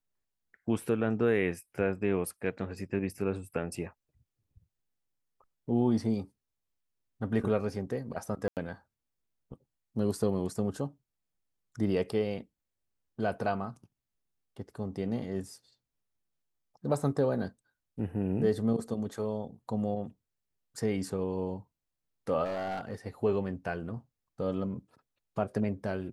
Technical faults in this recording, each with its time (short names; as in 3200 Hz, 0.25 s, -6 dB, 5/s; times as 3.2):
8.48–8.57 gap 88 ms
22.44–22.95 clipped -30.5 dBFS